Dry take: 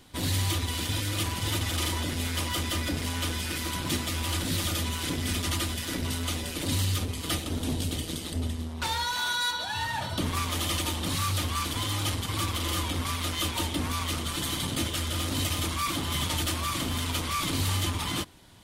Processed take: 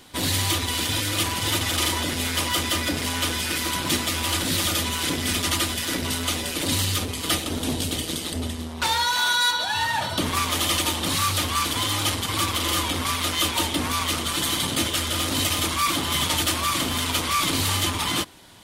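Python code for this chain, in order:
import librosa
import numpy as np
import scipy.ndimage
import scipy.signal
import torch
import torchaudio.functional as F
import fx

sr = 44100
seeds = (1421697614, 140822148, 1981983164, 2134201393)

y = fx.low_shelf(x, sr, hz=190.0, db=-9.5)
y = y * 10.0 ** (7.5 / 20.0)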